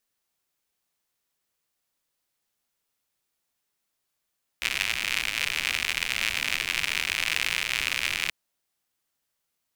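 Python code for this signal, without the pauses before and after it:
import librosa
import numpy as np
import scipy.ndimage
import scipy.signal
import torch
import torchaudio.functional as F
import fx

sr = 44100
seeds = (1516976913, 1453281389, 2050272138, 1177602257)

y = fx.rain(sr, seeds[0], length_s=3.68, drops_per_s=110.0, hz=2400.0, bed_db=-16)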